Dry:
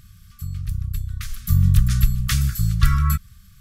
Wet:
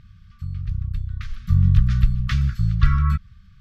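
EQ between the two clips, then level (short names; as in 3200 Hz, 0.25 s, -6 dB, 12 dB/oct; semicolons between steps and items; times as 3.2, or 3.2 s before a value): air absorption 240 m; 0.0 dB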